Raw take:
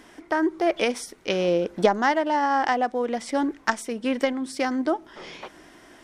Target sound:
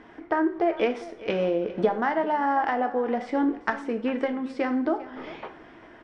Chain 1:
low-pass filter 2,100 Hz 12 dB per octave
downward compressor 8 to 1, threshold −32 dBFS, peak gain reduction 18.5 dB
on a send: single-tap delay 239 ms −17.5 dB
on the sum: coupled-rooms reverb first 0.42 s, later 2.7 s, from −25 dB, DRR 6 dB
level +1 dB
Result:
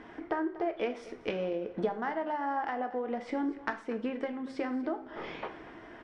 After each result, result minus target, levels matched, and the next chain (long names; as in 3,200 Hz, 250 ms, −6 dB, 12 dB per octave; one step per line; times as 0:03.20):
downward compressor: peak gain reduction +9 dB; echo 159 ms early
low-pass filter 2,100 Hz 12 dB per octave
downward compressor 8 to 1, threshold −22 dBFS, peak gain reduction 9.5 dB
on a send: single-tap delay 239 ms −17.5 dB
on the sum: coupled-rooms reverb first 0.42 s, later 2.7 s, from −25 dB, DRR 6 dB
level +1 dB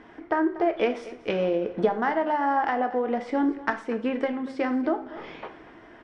echo 159 ms early
low-pass filter 2,100 Hz 12 dB per octave
downward compressor 8 to 1, threshold −22 dBFS, peak gain reduction 9.5 dB
on a send: single-tap delay 398 ms −17.5 dB
on the sum: coupled-rooms reverb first 0.42 s, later 2.7 s, from −25 dB, DRR 6 dB
level +1 dB